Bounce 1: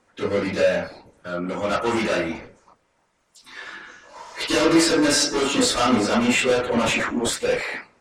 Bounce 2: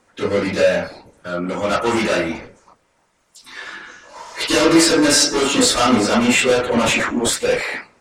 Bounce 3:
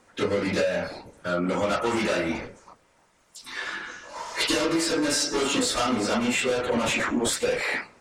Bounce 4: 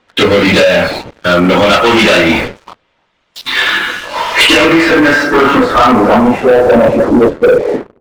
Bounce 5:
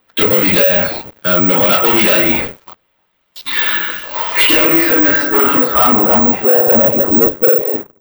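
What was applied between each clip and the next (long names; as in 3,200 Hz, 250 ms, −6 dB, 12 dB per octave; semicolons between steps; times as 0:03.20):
high-shelf EQ 6,500 Hz +4.5 dB; level +4 dB
downward compressor 12 to 1, threshold −21 dBFS, peak gain reduction 13.5 dB
low-pass filter sweep 3,400 Hz → 430 Hz, 0:04.14–0:07.36; leveller curve on the samples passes 3; level +8 dB
bad sample-rate conversion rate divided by 2×, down filtered, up zero stuff; level −6 dB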